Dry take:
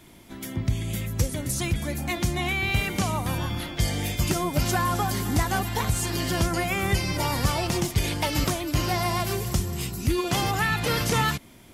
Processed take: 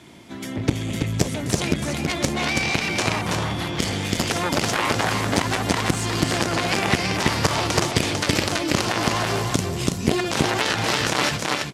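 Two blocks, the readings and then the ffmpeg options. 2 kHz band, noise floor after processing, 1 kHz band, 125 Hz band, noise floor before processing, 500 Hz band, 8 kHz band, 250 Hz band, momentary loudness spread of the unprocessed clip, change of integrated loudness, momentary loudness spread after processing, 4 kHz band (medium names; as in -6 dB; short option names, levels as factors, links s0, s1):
+5.5 dB, -31 dBFS, +3.5 dB, +0.5 dB, -49 dBFS, +5.0 dB, +4.0 dB, +4.5 dB, 5 LU, +3.5 dB, 4 LU, +6.5 dB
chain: -filter_complex "[0:a]aeval=exprs='0.282*(cos(1*acos(clip(val(0)/0.282,-1,1)))-cos(1*PI/2))+0.0562*(cos(2*acos(clip(val(0)/0.282,-1,1)))-cos(2*PI/2))+0.126*(cos(3*acos(clip(val(0)/0.282,-1,1)))-cos(3*PI/2))':c=same,highpass=100,lowpass=7300,asplit=2[s0][s1];[s1]aecho=0:1:328:0.562[s2];[s0][s2]amix=inputs=2:normalize=0,alimiter=level_in=8.91:limit=0.891:release=50:level=0:latency=1,volume=0.631"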